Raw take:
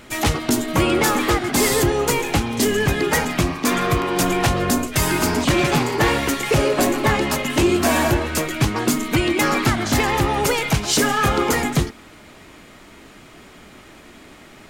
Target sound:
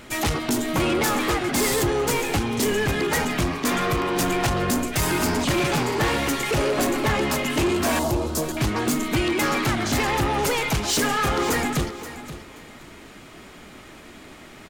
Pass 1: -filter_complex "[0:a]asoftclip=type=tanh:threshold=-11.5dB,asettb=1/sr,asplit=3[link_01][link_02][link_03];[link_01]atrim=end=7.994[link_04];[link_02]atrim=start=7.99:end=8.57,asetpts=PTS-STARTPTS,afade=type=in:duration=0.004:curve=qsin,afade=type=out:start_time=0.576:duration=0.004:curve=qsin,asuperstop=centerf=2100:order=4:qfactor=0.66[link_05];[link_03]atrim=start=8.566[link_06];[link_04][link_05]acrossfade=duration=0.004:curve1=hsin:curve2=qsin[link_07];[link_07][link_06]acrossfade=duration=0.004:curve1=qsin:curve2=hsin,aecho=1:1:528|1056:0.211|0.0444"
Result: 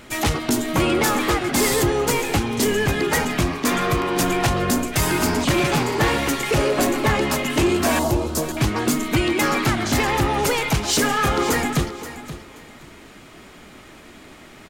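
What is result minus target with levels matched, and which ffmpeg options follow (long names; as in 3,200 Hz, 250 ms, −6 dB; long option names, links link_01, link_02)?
soft clipping: distortion −8 dB
-filter_complex "[0:a]asoftclip=type=tanh:threshold=-18dB,asettb=1/sr,asplit=3[link_01][link_02][link_03];[link_01]atrim=end=7.994[link_04];[link_02]atrim=start=7.99:end=8.57,asetpts=PTS-STARTPTS,afade=type=in:duration=0.004:curve=qsin,afade=type=out:start_time=0.576:duration=0.004:curve=qsin,asuperstop=centerf=2100:order=4:qfactor=0.66[link_05];[link_03]atrim=start=8.566[link_06];[link_04][link_05]acrossfade=duration=0.004:curve1=hsin:curve2=qsin[link_07];[link_07][link_06]acrossfade=duration=0.004:curve1=qsin:curve2=hsin,aecho=1:1:528|1056:0.211|0.0444"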